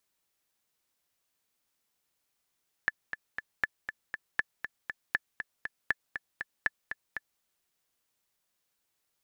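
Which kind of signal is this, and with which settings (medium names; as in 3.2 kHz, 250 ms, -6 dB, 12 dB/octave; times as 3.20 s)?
metronome 238 bpm, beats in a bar 3, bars 6, 1.74 kHz, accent 9 dB -12.5 dBFS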